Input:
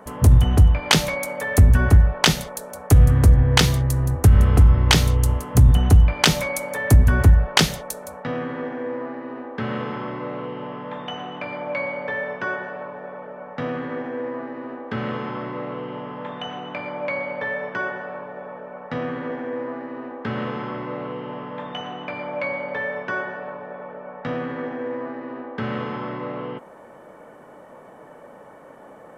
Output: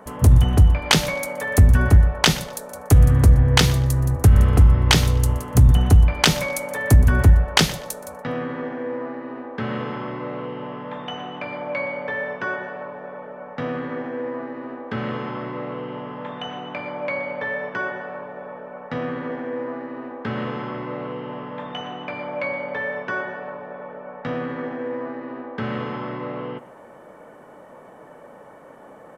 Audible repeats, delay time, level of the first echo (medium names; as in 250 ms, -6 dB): 2, 122 ms, -19.5 dB